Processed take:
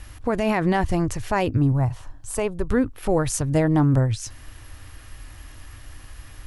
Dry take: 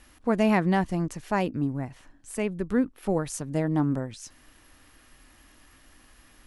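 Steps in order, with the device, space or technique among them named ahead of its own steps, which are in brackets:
car stereo with a boomy subwoofer (low shelf with overshoot 140 Hz +8.5 dB, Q 3; brickwall limiter −20 dBFS, peak gain reduction 9 dB)
0:01.72–0:02.69: octave-band graphic EQ 250/1,000/2,000 Hz −5/+5/−7 dB
level +8.5 dB

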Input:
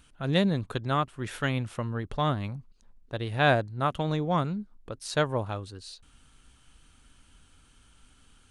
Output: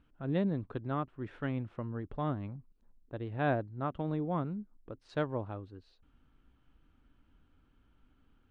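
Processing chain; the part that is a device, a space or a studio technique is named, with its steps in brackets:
phone in a pocket (low-pass filter 3,000 Hz 12 dB per octave; parametric band 300 Hz +5.5 dB 0.74 octaves; high-shelf EQ 2,100 Hz −11.5 dB)
0:05.09–0:05.49: high-shelf EQ 3,300 Hz +8.5 dB
level −7.5 dB

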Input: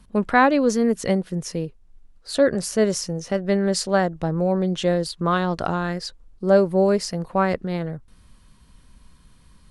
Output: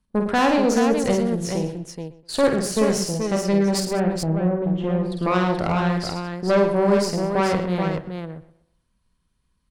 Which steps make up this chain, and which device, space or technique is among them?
noise gate −41 dBFS, range −19 dB
rockabilly slapback (tube saturation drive 16 dB, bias 0.65; tape delay 123 ms, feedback 34%, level −15.5 dB, low-pass 3,400 Hz)
0:03.80–0:05.12: drawn EQ curve 170 Hz 0 dB, 2,600 Hz −10 dB, 5,700 Hz −28 dB
multi-tap delay 50/108/130/196/429 ms −5/−9.5/−16.5/−17.5/−5.5 dB
level +2.5 dB

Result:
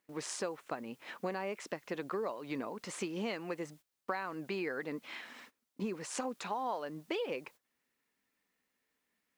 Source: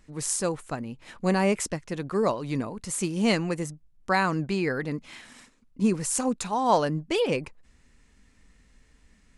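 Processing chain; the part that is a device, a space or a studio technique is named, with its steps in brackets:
baby monitor (band-pass filter 340–3,600 Hz; downward compressor 8 to 1, threshold −35 dBFS, peak gain reduction 18.5 dB; white noise bed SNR 29 dB; noise gate −57 dBFS, range −17 dB)
level +1 dB

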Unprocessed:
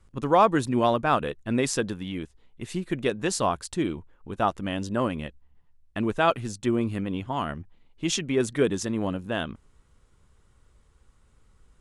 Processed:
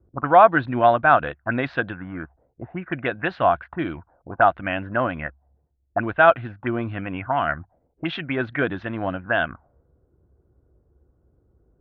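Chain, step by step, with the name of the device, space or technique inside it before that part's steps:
envelope filter bass rig (envelope-controlled low-pass 370–4,000 Hz up, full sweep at −23 dBFS; loudspeaker in its box 67–2,300 Hz, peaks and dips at 68 Hz +5 dB, 210 Hz −7 dB, 420 Hz −9 dB, 700 Hz +9 dB, 1,500 Hz +10 dB)
level +2 dB

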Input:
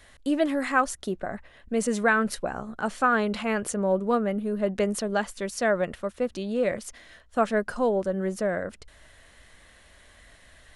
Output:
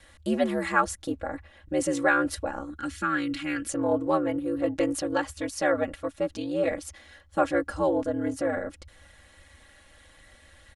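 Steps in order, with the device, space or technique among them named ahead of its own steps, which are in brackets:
0:02.70–0:03.70: flat-topped bell 680 Hz −15 dB
ring-modulated robot voice (ring modulation 76 Hz; comb filter 3.6 ms, depth 83%)

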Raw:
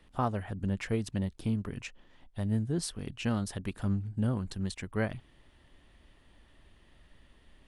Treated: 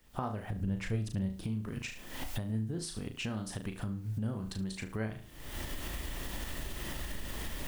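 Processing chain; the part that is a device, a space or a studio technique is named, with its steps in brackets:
0:00.50–0:01.31: low-shelf EQ 130 Hz +12 dB
flutter between parallel walls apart 6.3 metres, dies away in 0.32 s
cheap recorder with automatic gain (white noise bed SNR 35 dB; camcorder AGC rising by 58 dB per second)
level −7.5 dB

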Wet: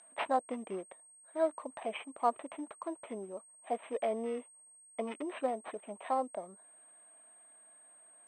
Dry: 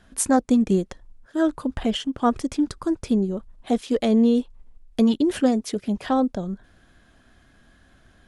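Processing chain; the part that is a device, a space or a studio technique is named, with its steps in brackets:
toy sound module (linearly interpolated sample-rate reduction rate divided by 8×; switching amplifier with a slow clock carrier 8,400 Hz; loudspeaker in its box 610–4,900 Hz, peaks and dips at 640 Hz +8 dB, 1,000 Hz +5 dB, 1,500 Hz −7 dB)
level −8 dB

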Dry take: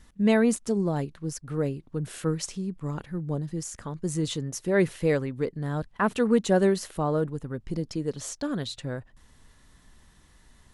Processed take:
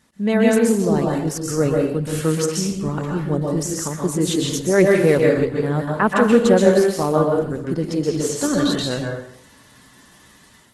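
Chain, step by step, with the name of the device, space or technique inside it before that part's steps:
far-field microphone of a smart speaker (convolution reverb RT60 0.60 s, pre-delay 120 ms, DRR −1 dB; high-pass filter 150 Hz 12 dB per octave; automatic gain control gain up to 7.5 dB; level +1.5 dB; Opus 16 kbit/s 48,000 Hz)

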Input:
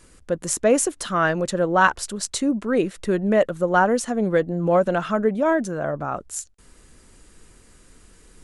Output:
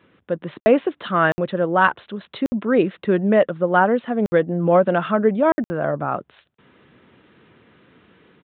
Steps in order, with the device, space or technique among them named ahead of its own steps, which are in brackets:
call with lost packets (high-pass filter 110 Hz 24 dB per octave; downsampling to 8,000 Hz; automatic gain control gain up to 4 dB; dropped packets of 60 ms random)
high-shelf EQ 6,200 Hz −5 dB

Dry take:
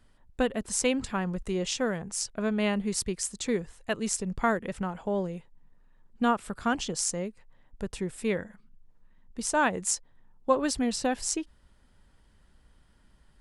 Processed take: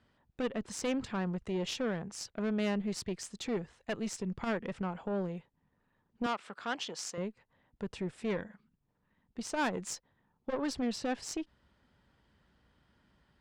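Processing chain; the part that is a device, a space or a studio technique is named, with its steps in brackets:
valve radio (band-pass filter 84–4,500 Hz; tube saturation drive 25 dB, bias 0.4; saturating transformer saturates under 150 Hz)
0:06.26–0:07.18: meter weighting curve A
level −1 dB

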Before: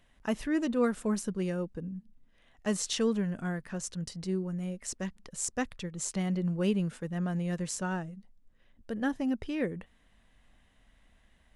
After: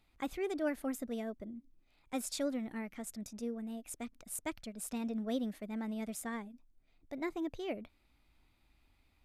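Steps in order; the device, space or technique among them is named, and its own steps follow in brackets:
nightcore (speed change +25%)
level −7 dB

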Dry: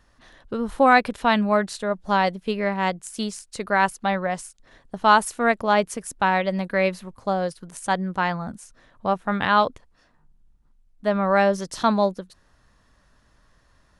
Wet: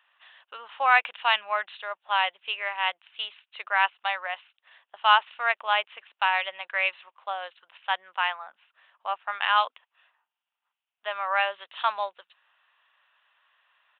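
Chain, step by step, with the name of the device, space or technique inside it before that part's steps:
0:08.47–0:09.56: high-frequency loss of the air 140 metres
musical greeting card (downsampling to 8,000 Hz; high-pass filter 810 Hz 24 dB per octave; parametric band 2,800 Hz +11 dB 0.51 octaves)
level −2.5 dB

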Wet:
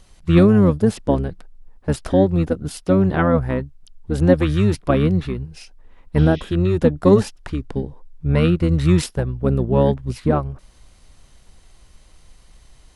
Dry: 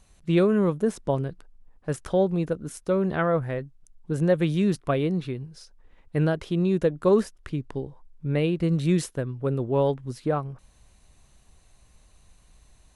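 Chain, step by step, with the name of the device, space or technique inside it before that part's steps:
octave pedal (pitch-shifted copies added −12 semitones −2 dB)
0:06.20–0:06.46: healed spectral selection 1,900–6,400 Hz after
0:07.05–0:08.50: dynamic equaliser 6,000 Hz, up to +4 dB, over −53 dBFS, Q 0.93
level +5 dB

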